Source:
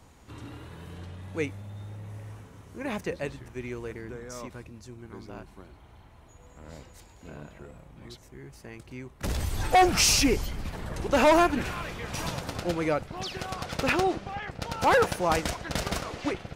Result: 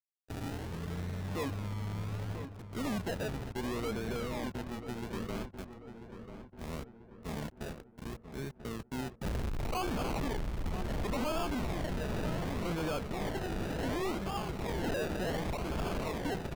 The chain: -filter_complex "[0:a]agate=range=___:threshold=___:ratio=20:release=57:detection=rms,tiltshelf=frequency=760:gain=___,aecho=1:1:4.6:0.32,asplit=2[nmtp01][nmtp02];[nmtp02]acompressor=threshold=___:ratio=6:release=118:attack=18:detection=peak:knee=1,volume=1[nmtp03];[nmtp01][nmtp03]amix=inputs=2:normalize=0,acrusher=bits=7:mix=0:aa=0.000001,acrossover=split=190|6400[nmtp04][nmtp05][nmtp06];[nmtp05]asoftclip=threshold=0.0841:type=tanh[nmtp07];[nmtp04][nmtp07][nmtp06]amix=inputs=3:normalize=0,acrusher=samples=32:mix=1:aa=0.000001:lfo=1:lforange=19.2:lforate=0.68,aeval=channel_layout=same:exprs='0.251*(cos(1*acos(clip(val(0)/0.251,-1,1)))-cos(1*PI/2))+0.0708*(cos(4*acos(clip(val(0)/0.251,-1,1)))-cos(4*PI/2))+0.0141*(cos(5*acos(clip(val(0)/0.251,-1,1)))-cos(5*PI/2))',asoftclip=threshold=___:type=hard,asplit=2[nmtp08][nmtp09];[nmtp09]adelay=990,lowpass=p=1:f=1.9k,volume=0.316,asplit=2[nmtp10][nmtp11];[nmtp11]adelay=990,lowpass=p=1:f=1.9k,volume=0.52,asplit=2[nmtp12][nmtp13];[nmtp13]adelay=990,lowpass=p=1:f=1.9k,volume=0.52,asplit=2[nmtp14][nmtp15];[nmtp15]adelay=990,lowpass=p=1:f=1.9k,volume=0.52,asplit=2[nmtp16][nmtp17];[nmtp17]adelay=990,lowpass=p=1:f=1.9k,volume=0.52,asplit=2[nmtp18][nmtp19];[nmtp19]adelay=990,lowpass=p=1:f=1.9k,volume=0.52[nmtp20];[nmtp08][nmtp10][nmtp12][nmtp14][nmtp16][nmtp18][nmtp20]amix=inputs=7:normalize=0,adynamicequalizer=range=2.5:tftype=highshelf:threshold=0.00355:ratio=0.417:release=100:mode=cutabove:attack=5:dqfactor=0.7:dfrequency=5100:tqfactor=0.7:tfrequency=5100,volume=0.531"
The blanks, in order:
0.158, 0.00501, 3.5, 0.0224, 0.0501